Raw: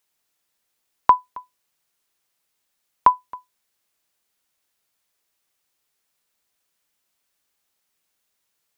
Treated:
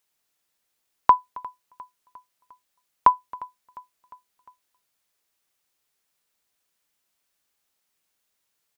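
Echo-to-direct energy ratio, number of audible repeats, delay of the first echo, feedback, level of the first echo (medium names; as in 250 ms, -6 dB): -20.5 dB, 3, 353 ms, 56%, -22.0 dB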